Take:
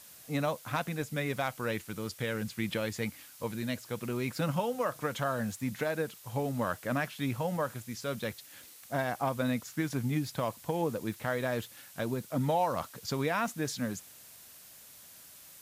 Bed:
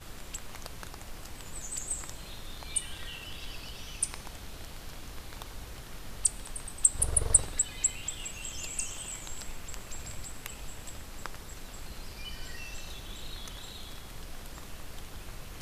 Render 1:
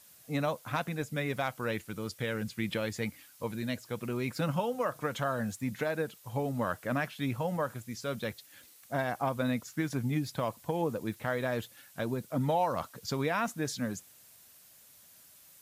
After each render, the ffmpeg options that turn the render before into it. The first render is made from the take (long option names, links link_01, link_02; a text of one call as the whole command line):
ffmpeg -i in.wav -af "afftdn=noise_reduction=6:noise_floor=-53" out.wav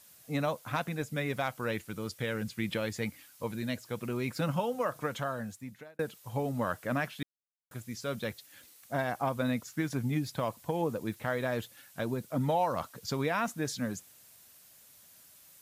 ffmpeg -i in.wav -filter_complex "[0:a]asplit=4[link_01][link_02][link_03][link_04];[link_01]atrim=end=5.99,asetpts=PTS-STARTPTS,afade=type=out:start_time=5.01:duration=0.98[link_05];[link_02]atrim=start=5.99:end=7.23,asetpts=PTS-STARTPTS,afade=type=in:duration=0.004:curve=hsin,afade=type=out:start_time=1.236:duration=0.004:curve=hsin[link_06];[link_03]atrim=start=7.23:end=7.71,asetpts=PTS-STARTPTS,volume=0[link_07];[link_04]atrim=start=7.71,asetpts=PTS-STARTPTS,afade=type=in:duration=0.004:curve=hsin[link_08];[link_05][link_06][link_07][link_08]concat=n=4:v=0:a=1" out.wav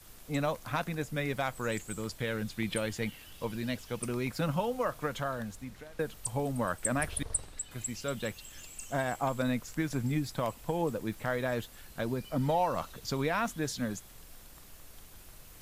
ffmpeg -i in.wav -i bed.wav -filter_complex "[1:a]volume=-10.5dB[link_01];[0:a][link_01]amix=inputs=2:normalize=0" out.wav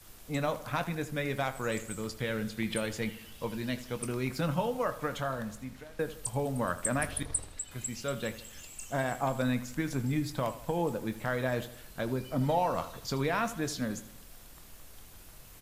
ffmpeg -i in.wav -filter_complex "[0:a]asplit=2[link_01][link_02];[link_02]adelay=23,volume=-12dB[link_03];[link_01][link_03]amix=inputs=2:normalize=0,asplit=2[link_04][link_05];[link_05]adelay=80,lowpass=frequency=3700:poles=1,volume=-14dB,asplit=2[link_06][link_07];[link_07]adelay=80,lowpass=frequency=3700:poles=1,volume=0.49,asplit=2[link_08][link_09];[link_09]adelay=80,lowpass=frequency=3700:poles=1,volume=0.49,asplit=2[link_10][link_11];[link_11]adelay=80,lowpass=frequency=3700:poles=1,volume=0.49,asplit=2[link_12][link_13];[link_13]adelay=80,lowpass=frequency=3700:poles=1,volume=0.49[link_14];[link_04][link_06][link_08][link_10][link_12][link_14]amix=inputs=6:normalize=0" out.wav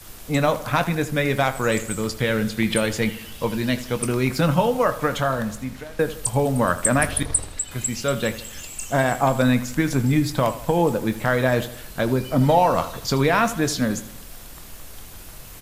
ffmpeg -i in.wav -af "volume=11.5dB,alimiter=limit=-3dB:level=0:latency=1" out.wav